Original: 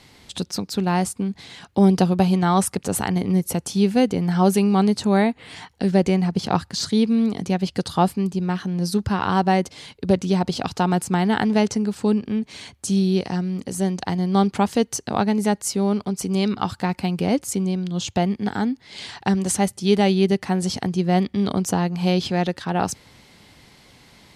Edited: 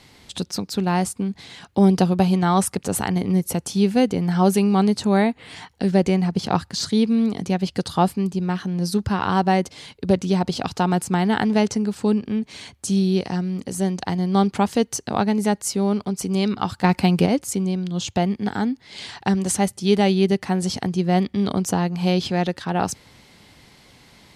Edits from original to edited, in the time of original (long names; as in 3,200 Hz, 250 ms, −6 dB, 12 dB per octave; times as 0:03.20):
0:16.84–0:17.26: clip gain +6 dB